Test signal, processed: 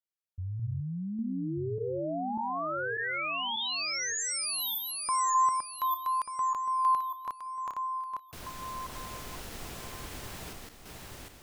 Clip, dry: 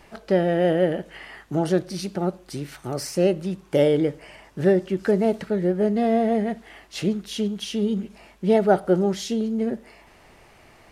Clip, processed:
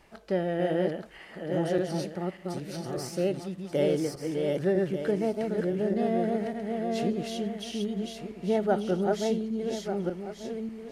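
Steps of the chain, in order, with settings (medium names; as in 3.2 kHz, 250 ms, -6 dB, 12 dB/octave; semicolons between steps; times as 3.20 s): backward echo that repeats 594 ms, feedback 45%, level -2.5 dB; trim -8 dB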